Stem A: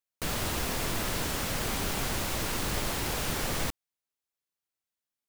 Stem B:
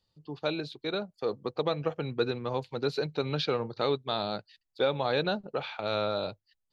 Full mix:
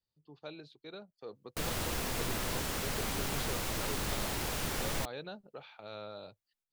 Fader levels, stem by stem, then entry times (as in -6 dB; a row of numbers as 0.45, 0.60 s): -4.0, -15.0 dB; 1.35, 0.00 s